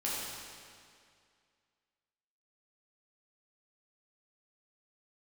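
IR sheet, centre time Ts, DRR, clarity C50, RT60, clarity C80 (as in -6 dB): 136 ms, -7.5 dB, -2.5 dB, 2.2 s, -0.5 dB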